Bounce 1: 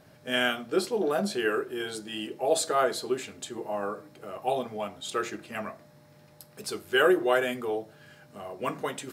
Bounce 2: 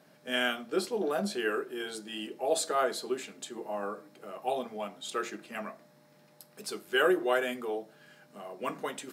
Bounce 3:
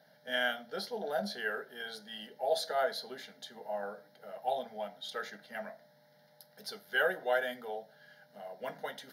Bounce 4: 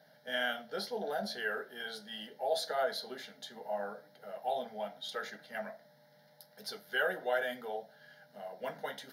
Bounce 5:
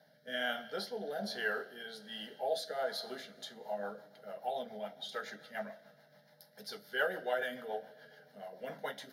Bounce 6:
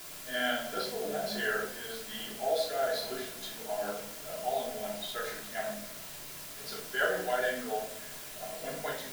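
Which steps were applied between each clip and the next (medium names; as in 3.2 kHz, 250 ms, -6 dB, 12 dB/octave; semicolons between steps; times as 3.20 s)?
Chebyshev high-pass 180 Hz, order 3; trim -3 dB
bass shelf 110 Hz -9.5 dB; static phaser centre 1.7 kHz, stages 8
in parallel at -2.5 dB: peak limiter -29 dBFS, peak gain reduction 11 dB; on the sum: flange 0.73 Hz, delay 6.2 ms, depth 8.8 ms, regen -58%
Schroeder reverb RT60 2.6 s, combs from 27 ms, DRR 16.5 dB; rotary cabinet horn 1.2 Hz, later 7 Hz, at 3.02 s; trim +1 dB
word length cut 8-bit, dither triangular; simulated room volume 760 m³, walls furnished, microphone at 3.1 m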